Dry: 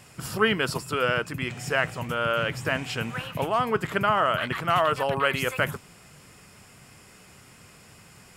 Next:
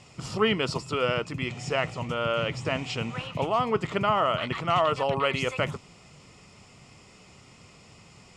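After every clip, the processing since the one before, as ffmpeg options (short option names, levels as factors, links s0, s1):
-af "lowpass=f=7200:w=0.5412,lowpass=f=7200:w=1.3066,equalizer=f=1600:w=5.8:g=-14.5"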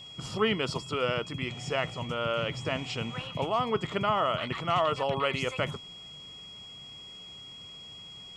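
-af "aeval=exprs='val(0)+0.00891*sin(2*PI*3300*n/s)':c=same,volume=0.708"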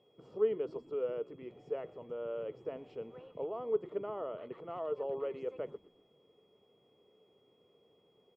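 -filter_complex "[0:a]bandpass=f=440:t=q:w=4.4:csg=0,asplit=4[s0][s1][s2][s3];[s1]adelay=122,afreqshift=-65,volume=0.0891[s4];[s2]adelay=244,afreqshift=-130,volume=0.0394[s5];[s3]adelay=366,afreqshift=-195,volume=0.0172[s6];[s0][s4][s5][s6]amix=inputs=4:normalize=0"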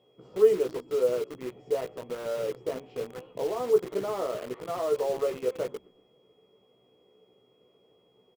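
-filter_complex "[0:a]asplit=2[s0][s1];[s1]adelay=16,volume=0.631[s2];[s0][s2]amix=inputs=2:normalize=0,asplit=2[s3][s4];[s4]acrusher=bits=6:mix=0:aa=0.000001,volume=0.596[s5];[s3][s5]amix=inputs=2:normalize=0,volume=1.41"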